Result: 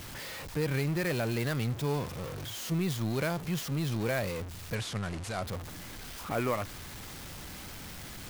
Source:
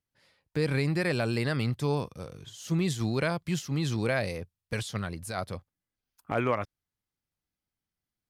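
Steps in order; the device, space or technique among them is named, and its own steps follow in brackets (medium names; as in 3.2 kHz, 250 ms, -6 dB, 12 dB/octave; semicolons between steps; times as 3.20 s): early CD player with a faulty converter (jump at every zero crossing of -30 dBFS; sampling jitter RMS 0.025 ms); 4.75–5.43 s: low-pass 10 kHz 24 dB/octave; trim -5 dB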